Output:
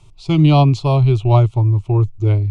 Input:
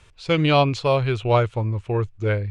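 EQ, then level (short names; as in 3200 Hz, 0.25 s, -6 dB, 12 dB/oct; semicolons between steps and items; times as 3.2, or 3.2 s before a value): low shelf 320 Hz +11.5 dB; fixed phaser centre 330 Hz, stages 8; +1.5 dB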